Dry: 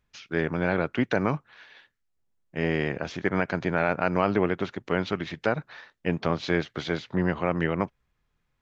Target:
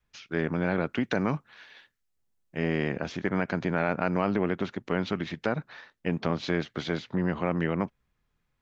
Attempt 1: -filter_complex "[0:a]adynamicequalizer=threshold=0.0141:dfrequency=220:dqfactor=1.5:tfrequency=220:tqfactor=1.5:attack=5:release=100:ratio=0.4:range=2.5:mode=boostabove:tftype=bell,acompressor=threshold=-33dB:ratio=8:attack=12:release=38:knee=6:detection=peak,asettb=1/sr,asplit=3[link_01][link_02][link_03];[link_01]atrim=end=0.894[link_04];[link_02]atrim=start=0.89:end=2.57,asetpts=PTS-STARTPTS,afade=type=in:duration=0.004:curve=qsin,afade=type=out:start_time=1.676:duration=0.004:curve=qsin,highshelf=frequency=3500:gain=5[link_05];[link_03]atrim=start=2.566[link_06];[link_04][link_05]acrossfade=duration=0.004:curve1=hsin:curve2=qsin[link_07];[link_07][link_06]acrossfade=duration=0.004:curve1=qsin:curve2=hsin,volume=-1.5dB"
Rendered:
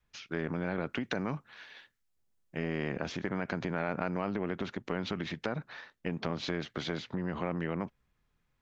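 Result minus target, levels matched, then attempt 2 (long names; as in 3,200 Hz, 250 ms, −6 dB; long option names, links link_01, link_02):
downward compressor: peak gain reduction +8.5 dB
-filter_complex "[0:a]adynamicequalizer=threshold=0.0141:dfrequency=220:dqfactor=1.5:tfrequency=220:tqfactor=1.5:attack=5:release=100:ratio=0.4:range=2.5:mode=boostabove:tftype=bell,acompressor=threshold=-23.5dB:ratio=8:attack=12:release=38:knee=6:detection=peak,asettb=1/sr,asplit=3[link_01][link_02][link_03];[link_01]atrim=end=0.894[link_04];[link_02]atrim=start=0.89:end=2.57,asetpts=PTS-STARTPTS,afade=type=in:duration=0.004:curve=qsin,afade=type=out:start_time=1.676:duration=0.004:curve=qsin,highshelf=frequency=3500:gain=5[link_05];[link_03]atrim=start=2.566[link_06];[link_04][link_05]acrossfade=duration=0.004:curve1=hsin:curve2=qsin[link_07];[link_07][link_06]acrossfade=duration=0.004:curve1=qsin:curve2=hsin,volume=-1.5dB"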